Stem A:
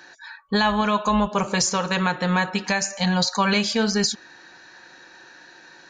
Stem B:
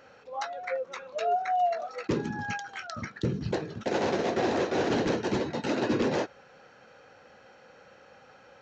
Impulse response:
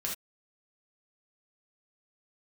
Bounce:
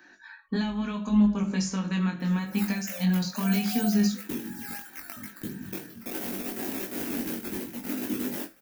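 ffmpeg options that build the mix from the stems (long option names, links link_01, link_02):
-filter_complex "[0:a]bandreject=frequency=50:width_type=h:width=6,bandreject=frequency=100:width_type=h:width=6,bandreject=frequency=150:width_type=h:width=6,bandreject=frequency=200:width_type=h:width=6,acrossover=split=320|3000[link_01][link_02][link_03];[link_02]acompressor=threshold=-28dB:ratio=6[link_04];[link_01][link_04][link_03]amix=inputs=3:normalize=0,volume=-3dB,asplit=3[link_05][link_06][link_07];[link_06]volume=-10dB[link_08];[link_07]volume=-23dB[link_09];[1:a]highshelf=frequency=4000:gain=6.5,acrusher=samples=10:mix=1:aa=0.000001:lfo=1:lforange=10:lforate=2.9,crystalizer=i=4:c=0,adelay=2200,volume=-6.5dB,asplit=2[link_10][link_11];[link_11]volume=-15dB[link_12];[2:a]atrim=start_sample=2205[link_13];[link_08][link_12]amix=inputs=2:normalize=0[link_14];[link_14][link_13]afir=irnorm=-1:irlink=0[link_15];[link_09]aecho=0:1:642:1[link_16];[link_05][link_10][link_15][link_16]amix=inputs=4:normalize=0,equalizer=frequency=125:width_type=o:width=1:gain=-7,equalizer=frequency=250:width_type=o:width=1:gain=10,equalizer=frequency=500:width_type=o:width=1:gain=-8,equalizer=frequency=1000:width_type=o:width=1:gain=-5,equalizer=frequency=4000:width_type=o:width=1:gain=-8,equalizer=frequency=8000:width_type=o:width=1:gain=-8,flanger=delay=19.5:depth=2.6:speed=0.74"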